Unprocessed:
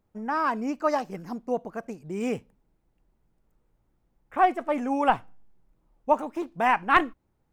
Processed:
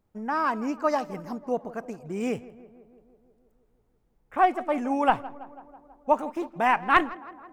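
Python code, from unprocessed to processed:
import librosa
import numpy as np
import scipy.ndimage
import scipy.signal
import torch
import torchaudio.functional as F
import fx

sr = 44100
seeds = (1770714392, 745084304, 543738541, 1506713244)

y = fx.echo_tape(x, sr, ms=164, feedback_pct=74, wet_db=-17, lp_hz=1800.0, drive_db=10.0, wow_cents=15)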